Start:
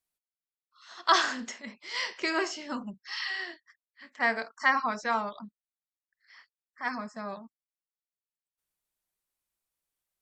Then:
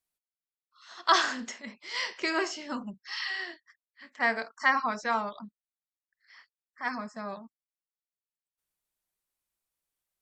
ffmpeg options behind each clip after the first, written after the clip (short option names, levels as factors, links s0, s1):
-af anull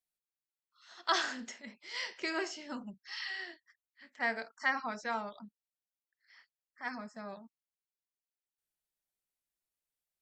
-af "equalizer=f=1100:t=o:w=0.24:g=-7.5,volume=0.501"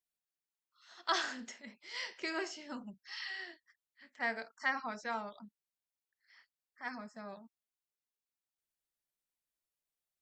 -af "aeval=exprs='0.188*(cos(1*acos(clip(val(0)/0.188,-1,1)))-cos(1*PI/2))+0.00473*(cos(2*acos(clip(val(0)/0.188,-1,1)))-cos(2*PI/2))':c=same,volume=0.75"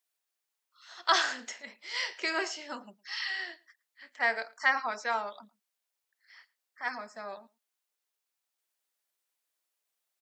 -filter_complex "[0:a]highpass=450,asplit=2[s0][s1];[s1]adelay=110.8,volume=0.0631,highshelf=f=4000:g=-2.49[s2];[s0][s2]amix=inputs=2:normalize=0,volume=2.51"